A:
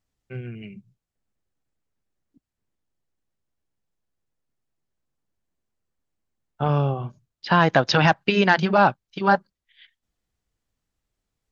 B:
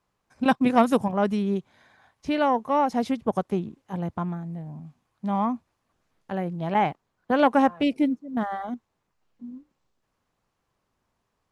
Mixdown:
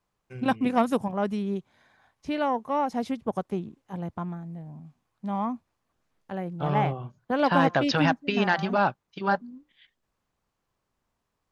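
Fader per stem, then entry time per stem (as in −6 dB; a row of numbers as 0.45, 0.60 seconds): −6.5, −4.0 decibels; 0.00, 0.00 seconds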